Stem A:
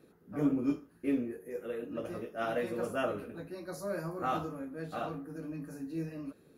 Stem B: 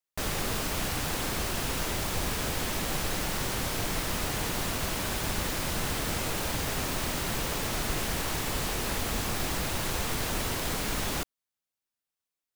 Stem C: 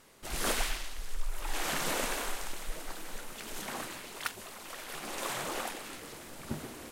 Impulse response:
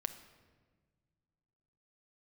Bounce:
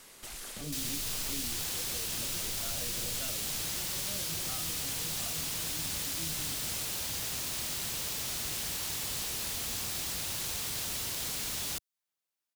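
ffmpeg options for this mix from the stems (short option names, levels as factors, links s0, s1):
-filter_complex "[0:a]acrusher=bits=6:mix=0:aa=0.000001,adelay=250,volume=1.12[s0];[1:a]highpass=f=280:p=1,adelay=550,volume=1.06[s1];[2:a]highshelf=f=2100:g=10,acompressor=threshold=0.0112:ratio=6,asoftclip=type=tanh:threshold=0.0119,volume=1.06[s2];[s0][s1][s2]amix=inputs=3:normalize=0,acrossover=split=140|3000[s3][s4][s5];[s4]acompressor=threshold=0.00447:ratio=5[s6];[s3][s6][s5]amix=inputs=3:normalize=0"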